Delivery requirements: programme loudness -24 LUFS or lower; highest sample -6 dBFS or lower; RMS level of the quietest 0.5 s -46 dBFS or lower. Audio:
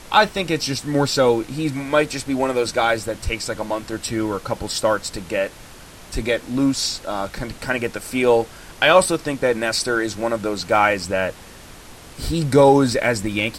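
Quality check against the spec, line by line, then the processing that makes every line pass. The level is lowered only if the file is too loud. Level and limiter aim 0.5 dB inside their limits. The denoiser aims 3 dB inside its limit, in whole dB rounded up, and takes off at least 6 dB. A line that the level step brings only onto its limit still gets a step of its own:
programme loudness -20.5 LUFS: fail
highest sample -2.5 dBFS: fail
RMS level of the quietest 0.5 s -41 dBFS: fail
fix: noise reduction 6 dB, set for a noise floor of -41 dBFS; trim -4 dB

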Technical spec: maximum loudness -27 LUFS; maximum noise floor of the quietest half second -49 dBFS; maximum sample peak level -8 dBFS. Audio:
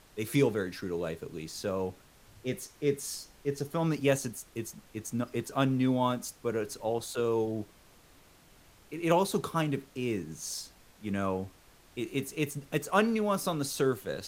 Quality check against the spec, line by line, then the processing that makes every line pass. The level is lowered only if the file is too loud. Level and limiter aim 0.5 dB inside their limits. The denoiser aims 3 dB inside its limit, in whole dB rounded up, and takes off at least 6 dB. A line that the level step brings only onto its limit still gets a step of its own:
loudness -32.0 LUFS: pass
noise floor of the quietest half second -59 dBFS: pass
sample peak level -11.5 dBFS: pass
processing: none needed

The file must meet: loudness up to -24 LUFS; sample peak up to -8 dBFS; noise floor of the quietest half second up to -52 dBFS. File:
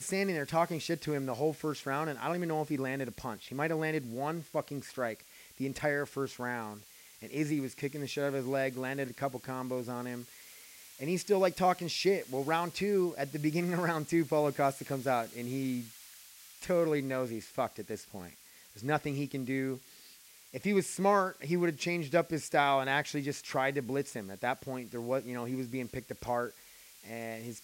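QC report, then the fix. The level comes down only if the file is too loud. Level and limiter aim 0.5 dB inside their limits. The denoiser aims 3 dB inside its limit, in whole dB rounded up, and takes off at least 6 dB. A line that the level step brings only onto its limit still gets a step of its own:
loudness -33.5 LUFS: pass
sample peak -13.5 dBFS: pass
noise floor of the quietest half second -56 dBFS: pass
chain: none needed

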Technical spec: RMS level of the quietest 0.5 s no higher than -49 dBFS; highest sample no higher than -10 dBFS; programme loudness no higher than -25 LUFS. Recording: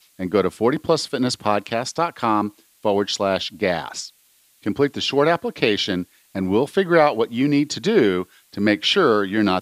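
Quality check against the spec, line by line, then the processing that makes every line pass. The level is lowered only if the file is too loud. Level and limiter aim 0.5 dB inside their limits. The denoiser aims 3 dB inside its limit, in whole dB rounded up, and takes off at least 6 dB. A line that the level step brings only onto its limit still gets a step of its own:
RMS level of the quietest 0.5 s -58 dBFS: pass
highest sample -2.5 dBFS: fail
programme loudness -20.5 LUFS: fail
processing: trim -5 dB; peak limiter -10.5 dBFS

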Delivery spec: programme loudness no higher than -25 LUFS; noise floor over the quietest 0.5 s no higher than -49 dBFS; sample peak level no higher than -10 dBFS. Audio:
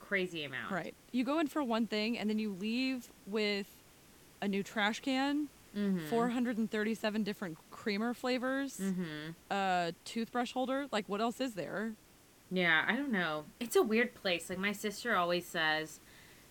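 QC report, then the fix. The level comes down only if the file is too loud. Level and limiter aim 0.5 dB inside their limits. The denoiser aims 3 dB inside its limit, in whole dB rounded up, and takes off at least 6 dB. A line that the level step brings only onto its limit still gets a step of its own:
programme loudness -35.0 LUFS: pass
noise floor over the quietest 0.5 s -62 dBFS: pass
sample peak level -15.5 dBFS: pass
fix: none needed

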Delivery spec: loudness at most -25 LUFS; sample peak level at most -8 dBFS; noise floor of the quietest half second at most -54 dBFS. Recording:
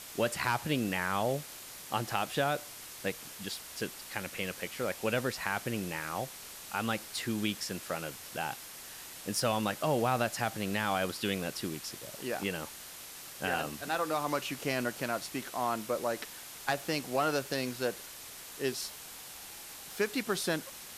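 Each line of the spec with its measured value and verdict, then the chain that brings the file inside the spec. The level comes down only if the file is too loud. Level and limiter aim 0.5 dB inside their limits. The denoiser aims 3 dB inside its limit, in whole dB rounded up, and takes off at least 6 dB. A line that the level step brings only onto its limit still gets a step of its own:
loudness -34.5 LUFS: pass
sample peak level -14.0 dBFS: pass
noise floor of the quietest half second -47 dBFS: fail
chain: noise reduction 10 dB, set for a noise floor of -47 dBFS

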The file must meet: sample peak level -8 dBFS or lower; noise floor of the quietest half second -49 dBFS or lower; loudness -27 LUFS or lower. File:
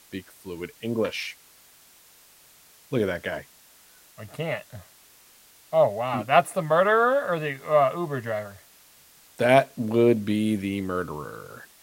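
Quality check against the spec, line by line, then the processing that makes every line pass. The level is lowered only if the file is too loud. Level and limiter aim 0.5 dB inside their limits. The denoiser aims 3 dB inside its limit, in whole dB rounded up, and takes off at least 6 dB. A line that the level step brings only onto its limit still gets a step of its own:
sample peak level -3.5 dBFS: fail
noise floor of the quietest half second -55 dBFS: pass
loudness -24.5 LUFS: fail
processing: trim -3 dB; peak limiter -8.5 dBFS

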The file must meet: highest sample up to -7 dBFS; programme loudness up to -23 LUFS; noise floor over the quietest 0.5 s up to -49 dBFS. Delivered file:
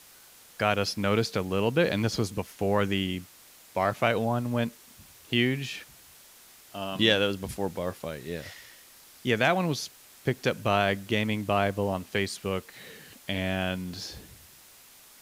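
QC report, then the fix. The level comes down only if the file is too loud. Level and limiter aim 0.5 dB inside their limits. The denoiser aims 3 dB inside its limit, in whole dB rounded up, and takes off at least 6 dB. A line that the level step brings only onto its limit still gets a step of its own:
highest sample -8.5 dBFS: pass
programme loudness -28.5 LUFS: pass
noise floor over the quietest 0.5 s -53 dBFS: pass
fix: none needed

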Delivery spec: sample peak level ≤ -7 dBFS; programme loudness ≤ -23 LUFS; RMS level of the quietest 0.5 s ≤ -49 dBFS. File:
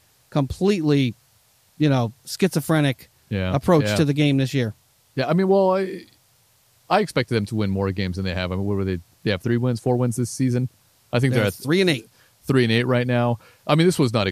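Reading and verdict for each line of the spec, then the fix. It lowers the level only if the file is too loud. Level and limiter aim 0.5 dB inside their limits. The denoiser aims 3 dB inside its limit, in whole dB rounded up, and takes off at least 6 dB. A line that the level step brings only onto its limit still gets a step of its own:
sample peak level -5.0 dBFS: fail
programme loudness -21.5 LUFS: fail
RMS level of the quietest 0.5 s -60 dBFS: pass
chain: trim -2 dB; peak limiter -7.5 dBFS

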